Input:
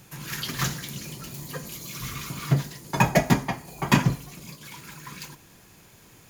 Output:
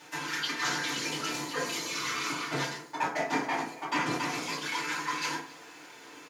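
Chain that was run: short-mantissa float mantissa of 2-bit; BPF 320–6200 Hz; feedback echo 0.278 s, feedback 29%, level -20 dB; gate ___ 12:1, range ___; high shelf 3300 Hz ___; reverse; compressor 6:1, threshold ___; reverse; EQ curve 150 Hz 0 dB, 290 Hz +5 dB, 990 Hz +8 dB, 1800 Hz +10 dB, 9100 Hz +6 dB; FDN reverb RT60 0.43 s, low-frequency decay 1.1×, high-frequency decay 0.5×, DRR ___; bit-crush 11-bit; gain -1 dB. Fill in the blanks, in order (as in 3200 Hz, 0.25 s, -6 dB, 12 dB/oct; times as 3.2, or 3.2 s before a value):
-50 dBFS, -8 dB, +2.5 dB, -44 dBFS, -7.5 dB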